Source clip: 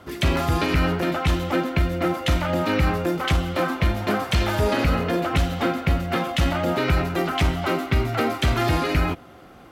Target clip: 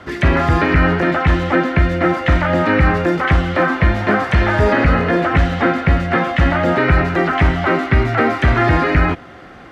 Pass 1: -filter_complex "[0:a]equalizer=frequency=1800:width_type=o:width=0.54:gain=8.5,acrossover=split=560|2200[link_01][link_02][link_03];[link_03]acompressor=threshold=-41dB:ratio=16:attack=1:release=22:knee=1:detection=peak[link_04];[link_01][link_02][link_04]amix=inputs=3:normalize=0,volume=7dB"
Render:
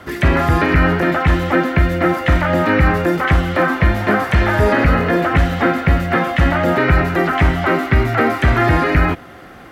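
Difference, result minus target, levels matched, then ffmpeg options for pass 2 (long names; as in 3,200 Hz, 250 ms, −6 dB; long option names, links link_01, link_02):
8,000 Hz band +3.5 dB
-filter_complex "[0:a]lowpass=6300,equalizer=frequency=1800:width_type=o:width=0.54:gain=8.5,acrossover=split=560|2200[link_01][link_02][link_03];[link_03]acompressor=threshold=-41dB:ratio=16:attack=1:release=22:knee=1:detection=peak[link_04];[link_01][link_02][link_04]amix=inputs=3:normalize=0,volume=7dB"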